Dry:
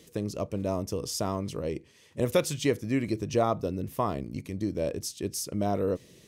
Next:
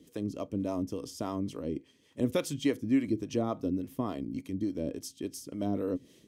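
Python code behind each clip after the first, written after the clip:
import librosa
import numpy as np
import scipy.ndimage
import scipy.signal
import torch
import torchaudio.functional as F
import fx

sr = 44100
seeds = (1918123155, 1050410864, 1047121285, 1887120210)

y = fx.small_body(x, sr, hz=(270.0, 3200.0), ring_ms=45, db=13)
y = fx.harmonic_tremolo(y, sr, hz=3.5, depth_pct=70, crossover_hz=450.0)
y = y * librosa.db_to_amplitude(-4.0)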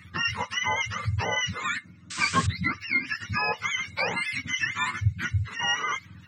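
y = fx.octave_mirror(x, sr, pivot_hz=760.0)
y = fx.rider(y, sr, range_db=10, speed_s=0.5)
y = fx.spec_paint(y, sr, seeds[0], shape='noise', start_s=2.1, length_s=0.37, low_hz=1100.0, high_hz=8600.0, level_db=-44.0)
y = y * librosa.db_to_amplitude(8.0)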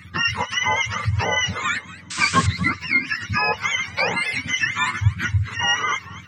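y = fx.echo_warbled(x, sr, ms=231, feedback_pct=36, rate_hz=2.8, cents=176, wet_db=-18.0)
y = y * librosa.db_to_amplitude(6.0)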